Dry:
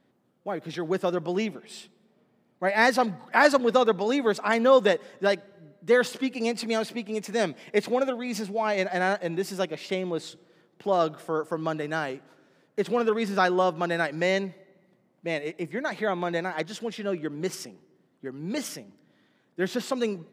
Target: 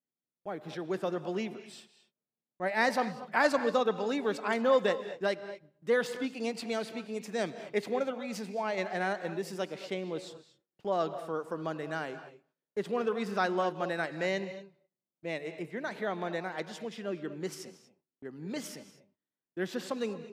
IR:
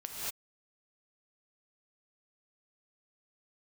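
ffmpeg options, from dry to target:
-filter_complex "[0:a]agate=range=0.0562:threshold=0.00398:ratio=16:detection=peak,atempo=1,asplit=2[s0][s1];[1:a]atrim=start_sample=2205,highshelf=f=7500:g=-12[s2];[s1][s2]afir=irnorm=-1:irlink=0,volume=0.316[s3];[s0][s3]amix=inputs=2:normalize=0,volume=0.376"

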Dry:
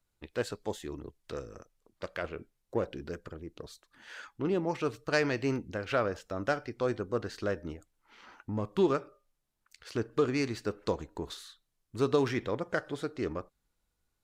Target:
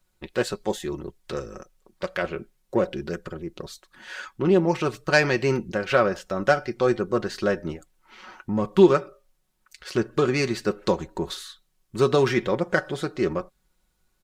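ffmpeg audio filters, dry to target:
-af "aecho=1:1:5.4:0.59,volume=2.51"

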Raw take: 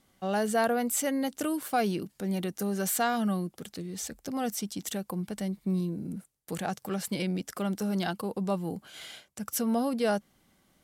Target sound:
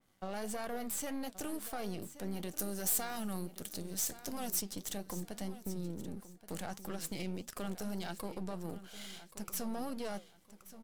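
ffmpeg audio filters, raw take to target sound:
-filter_complex "[0:a]aeval=exprs='if(lt(val(0),0),0.251*val(0),val(0))':c=same,alimiter=limit=0.0631:level=0:latency=1:release=21,acompressor=threshold=0.0178:ratio=2,flanger=delay=5.4:depth=7.1:regen=-78:speed=1.6:shape=triangular,asettb=1/sr,asplit=3[s0][s1][s2];[s0]atrim=end=2.494[s3];[s1]atrim=start=2.49:end=4.62,asetpts=PTS-STARTPTS,afade=t=in:d=0.004:c=qsin,afade=t=out:st=2.126:d=0.004:c=qsin,highshelf=f=5500:g=9.5[s4];[s2]atrim=start=4.616[s5];[s3][s4]acrossfade=d=0.004:c1=hsin:c2=qsin[s6];[s6][s5]acrossfade=d=0.004:c1=qsin:c2=hsin,aecho=1:1:1126|2252|3378:0.188|0.0527|0.0148,adynamicequalizer=threshold=0.00126:dfrequency=3300:dqfactor=0.7:tfrequency=3300:tqfactor=0.7:attack=5:release=100:ratio=0.375:range=2:mode=boostabove:tftype=highshelf,volume=1.19"

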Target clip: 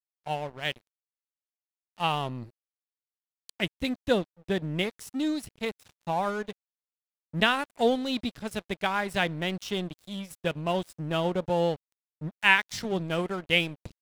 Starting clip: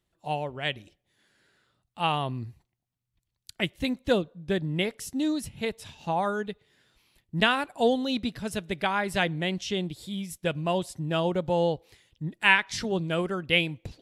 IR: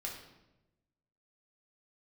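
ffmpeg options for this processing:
-af "aeval=exprs='sgn(val(0))*max(abs(val(0))-0.00891,0)':c=same"

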